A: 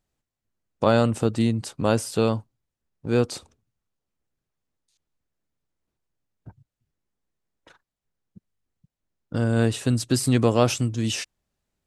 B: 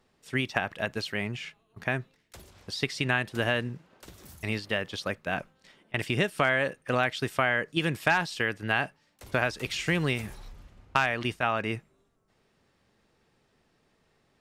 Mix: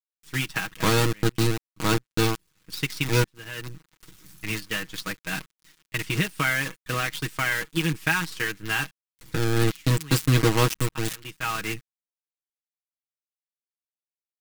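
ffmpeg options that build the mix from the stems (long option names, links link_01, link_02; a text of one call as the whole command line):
ffmpeg -i stem1.wav -i stem2.wav -filter_complex "[0:a]aeval=exprs='val(0)*gte(abs(val(0)),0.112)':channel_layout=same,volume=2dB,asplit=2[link_01][link_02];[1:a]acrusher=bits=6:dc=4:mix=0:aa=0.000001,volume=1dB[link_03];[link_02]apad=whole_len=635219[link_04];[link_03][link_04]sidechaincompress=threshold=-37dB:ratio=8:attack=5.4:release=308[link_05];[link_01][link_05]amix=inputs=2:normalize=0,equalizer=frequency=630:width_type=o:width=0.89:gain=-14,aecho=1:1:6.3:0.68" out.wav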